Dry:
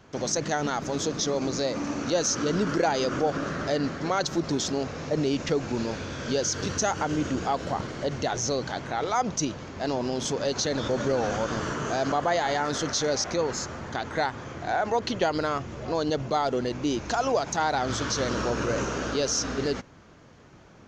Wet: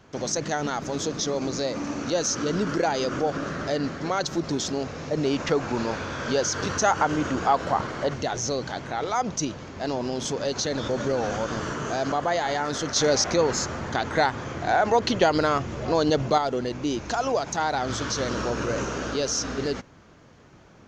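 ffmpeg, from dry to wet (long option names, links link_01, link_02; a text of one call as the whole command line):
ffmpeg -i in.wav -filter_complex "[0:a]asettb=1/sr,asplit=3[link_01][link_02][link_03];[link_01]atrim=end=5.244[link_04];[link_02]atrim=start=5.24:end=8.14,asetpts=PTS-STARTPTS,afade=type=in:duration=0.004:curve=qsin,afade=type=out:start_time=2.896:duration=0.004:curve=qsin,equalizer=frequency=1100:width_type=o:width=1.8:gain=8[link_05];[link_03]atrim=start=8.136[link_06];[link_04][link_05]acrossfade=duration=0.004:curve1=hsin:curve2=qsin[link_07];[link_07][link_06]acrossfade=duration=0.004:curve1=qsin:curve2=hsin,asplit=3[link_08][link_09][link_10];[link_08]atrim=end=12.962[link_11];[link_09]atrim=start=12.958:end=16.382,asetpts=PTS-STARTPTS,volume=5dB[link_12];[link_10]atrim=start=16.378[link_13];[link_11][link_12]acrossfade=duration=0.004:curve1=hsin:curve2=hsin[link_14];[link_14][link_13]acrossfade=duration=0.004:curve1=hsin:curve2=hsin" out.wav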